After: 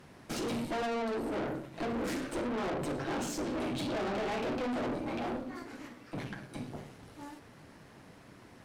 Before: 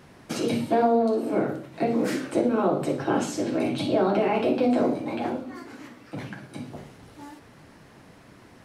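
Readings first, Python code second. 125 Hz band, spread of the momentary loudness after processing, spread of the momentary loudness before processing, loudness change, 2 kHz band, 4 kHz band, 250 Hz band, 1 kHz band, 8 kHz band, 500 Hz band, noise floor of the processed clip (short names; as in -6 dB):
-7.5 dB, 20 LU, 17 LU, -11.0 dB, -4.5 dB, -4.5 dB, -10.0 dB, -9.5 dB, -5.0 dB, -11.0 dB, -56 dBFS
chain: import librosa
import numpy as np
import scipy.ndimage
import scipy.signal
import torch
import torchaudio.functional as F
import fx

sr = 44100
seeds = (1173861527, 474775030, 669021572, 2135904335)

y = fx.tube_stage(x, sr, drive_db=32.0, bias=0.7)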